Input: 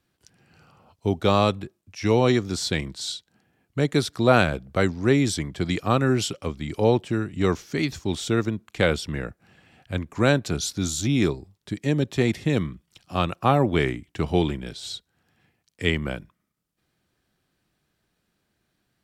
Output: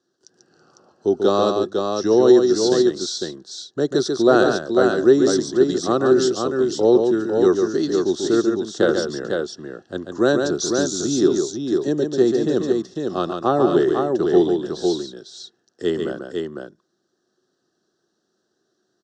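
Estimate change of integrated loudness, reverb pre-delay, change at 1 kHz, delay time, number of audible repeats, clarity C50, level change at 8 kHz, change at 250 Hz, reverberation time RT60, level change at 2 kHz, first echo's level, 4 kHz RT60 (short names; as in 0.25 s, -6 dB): +5.0 dB, none, +2.0 dB, 0.141 s, 2, none, +4.5 dB, +5.5 dB, none, -1.0 dB, -5.5 dB, none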